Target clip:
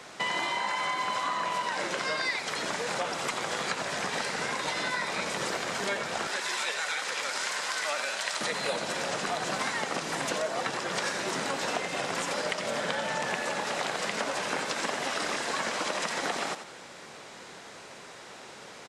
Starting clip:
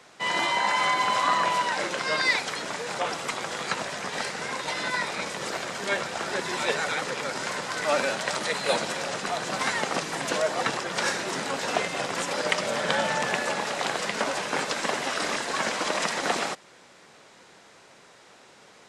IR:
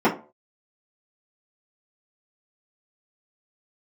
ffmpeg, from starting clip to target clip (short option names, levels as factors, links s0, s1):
-filter_complex "[0:a]asettb=1/sr,asplit=3[s0][s1][s2];[s0]atrim=end=6.274[s3];[s1]atrim=start=6.27:end=8.41,asetpts=PTS-STARTPTS,afade=t=in:d=0.004:c=qsin,afade=t=out:st=2.136:d=0.004:c=qsin,highpass=f=1500:p=1[s4];[s2]atrim=start=8.406[s5];[s3][s4]acrossfade=d=0.004:c1=hsin:c2=qsin[s6];[s6][s5]acrossfade=d=0.004:c1=qsin:c2=hsin,acompressor=threshold=0.0178:ratio=6,asplit=5[s7][s8][s9][s10][s11];[s8]adelay=88,afreqshift=40,volume=0.316[s12];[s9]adelay=176,afreqshift=80,volume=0.111[s13];[s10]adelay=264,afreqshift=120,volume=0.0389[s14];[s11]adelay=352,afreqshift=160,volume=0.0135[s15];[s7][s12][s13][s14][s15]amix=inputs=5:normalize=0,volume=2"